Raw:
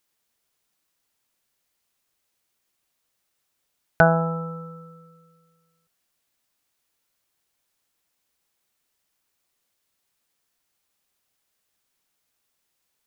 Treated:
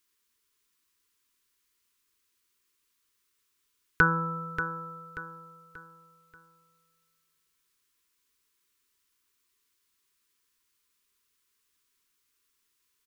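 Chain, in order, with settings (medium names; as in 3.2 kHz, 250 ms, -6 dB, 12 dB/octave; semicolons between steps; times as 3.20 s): elliptic band-stop 450–970 Hz, stop band 40 dB; peaking EQ 150 Hz -9.5 dB 0.87 oct; feedback delay 584 ms, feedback 38%, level -10 dB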